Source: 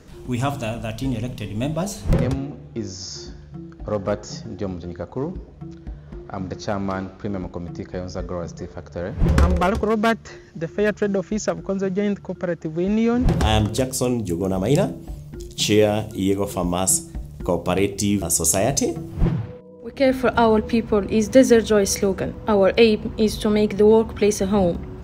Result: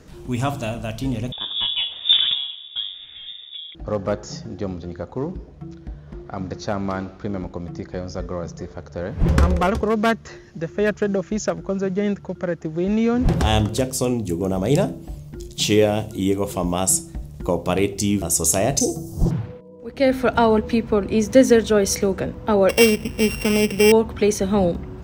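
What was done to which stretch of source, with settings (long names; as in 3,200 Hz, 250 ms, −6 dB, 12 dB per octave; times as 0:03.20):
0:01.32–0:03.75: voice inversion scrambler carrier 3,600 Hz
0:18.80–0:19.31: drawn EQ curve 780 Hz 0 dB, 2,300 Hz −21 dB, 5,800 Hz +13 dB
0:22.69–0:23.92: samples sorted by size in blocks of 16 samples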